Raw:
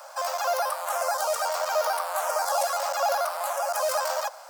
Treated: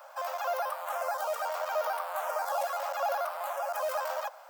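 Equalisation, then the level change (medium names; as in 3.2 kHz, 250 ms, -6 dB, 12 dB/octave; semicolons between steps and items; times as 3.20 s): high-order bell 7 kHz -9 dB; -5.5 dB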